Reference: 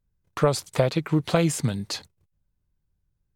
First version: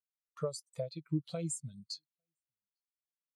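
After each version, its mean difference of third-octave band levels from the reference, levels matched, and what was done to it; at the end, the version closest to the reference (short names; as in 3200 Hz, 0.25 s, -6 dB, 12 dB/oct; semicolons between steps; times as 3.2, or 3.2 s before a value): 12.5 dB: pre-emphasis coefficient 0.9; compressor 2.5:1, threshold -41 dBFS, peak gain reduction 9.5 dB; on a send: echo 0.851 s -23 dB; on the sum: spectral expander 2.5:1; gain +2.5 dB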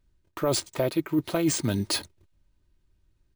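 5.5 dB: bell 350 Hz +6.5 dB 0.55 oct; comb 3.2 ms, depth 40%; reverse; compressor 6:1, threshold -28 dBFS, peak gain reduction 14.5 dB; reverse; careless resampling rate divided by 3×, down none, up hold; gain +5.5 dB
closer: second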